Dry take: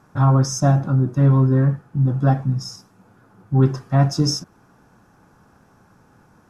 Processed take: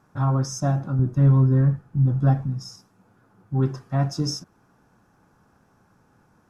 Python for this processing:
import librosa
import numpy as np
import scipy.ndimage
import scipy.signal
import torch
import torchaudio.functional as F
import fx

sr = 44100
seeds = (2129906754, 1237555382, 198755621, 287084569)

y = fx.low_shelf(x, sr, hz=120.0, db=12.0, at=(0.99, 2.47))
y = F.gain(torch.from_numpy(y), -6.5).numpy()